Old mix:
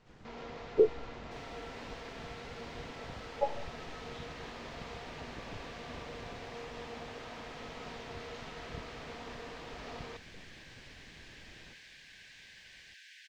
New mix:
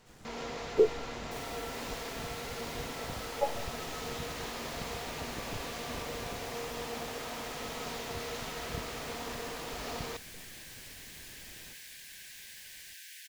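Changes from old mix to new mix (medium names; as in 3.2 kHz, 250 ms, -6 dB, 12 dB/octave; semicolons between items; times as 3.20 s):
first sound +5.0 dB; master: remove distance through air 160 m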